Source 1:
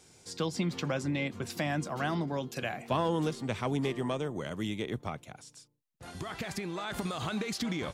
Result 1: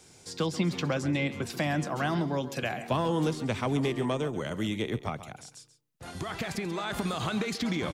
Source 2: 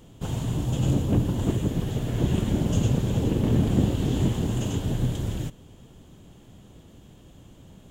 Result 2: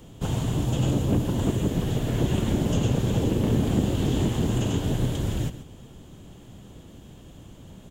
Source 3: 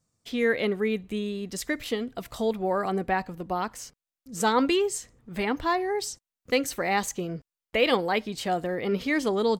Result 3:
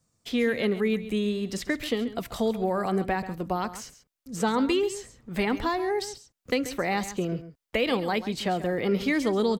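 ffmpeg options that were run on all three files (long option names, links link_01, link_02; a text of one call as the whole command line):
ffmpeg -i in.wav -filter_complex "[0:a]acrossover=split=270|4500[link_01][link_02][link_03];[link_01]acompressor=threshold=-26dB:ratio=4[link_04];[link_02]acompressor=threshold=-29dB:ratio=4[link_05];[link_03]acompressor=threshold=-46dB:ratio=4[link_06];[link_04][link_05][link_06]amix=inputs=3:normalize=0,aecho=1:1:135:0.211,volume=3.5dB" out.wav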